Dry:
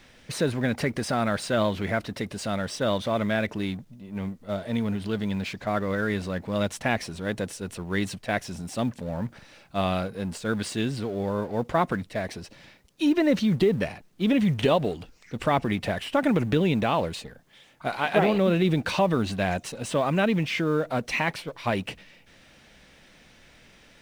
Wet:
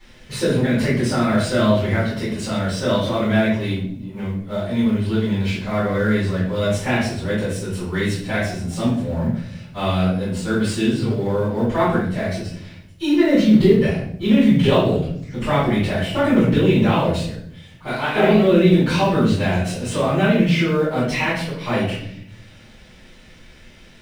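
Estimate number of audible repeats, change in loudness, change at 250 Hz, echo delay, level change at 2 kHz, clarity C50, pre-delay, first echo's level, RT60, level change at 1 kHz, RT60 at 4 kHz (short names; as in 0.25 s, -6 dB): none, +7.5 dB, +8.5 dB, none, +5.5 dB, 2.0 dB, 3 ms, none, 0.65 s, +4.0 dB, 0.50 s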